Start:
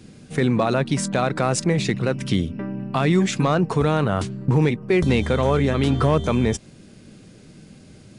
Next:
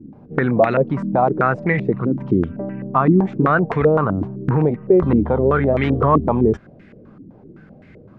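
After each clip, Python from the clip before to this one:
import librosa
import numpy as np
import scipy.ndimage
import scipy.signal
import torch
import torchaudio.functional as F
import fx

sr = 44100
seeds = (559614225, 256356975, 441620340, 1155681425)

y = fx.filter_held_lowpass(x, sr, hz=7.8, low_hz=290.0, high_hz=2000.0)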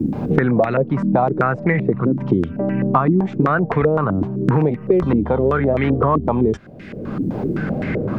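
y = fx.band_squash(x, sr, depth_pct=100)
y = y * librosa.db_to_amplitude(-1.0)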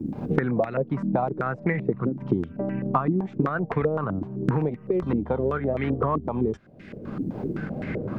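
y = fx.transient(x, sr, attack_db=3, sustain_db=-4)
y = fx.volume_shaper(y, sr, bpm=86, per_beat=1, depth_db=-4, release_ms=63.0, shape='slow start')
y = y * librosa.db_to_amplitude(-8.5)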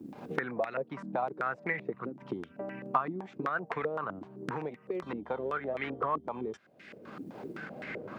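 y = fx.highpass(x, sr, hz=1300.0, slope=6)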